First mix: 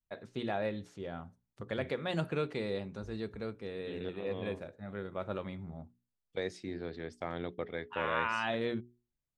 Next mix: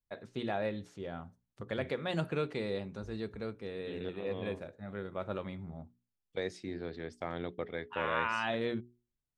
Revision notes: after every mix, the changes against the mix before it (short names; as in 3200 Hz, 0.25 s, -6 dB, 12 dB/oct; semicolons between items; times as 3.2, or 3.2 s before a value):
none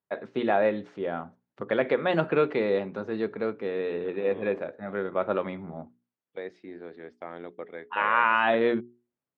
first voice +12.0 dB; master: add BPF 260–2200 Hz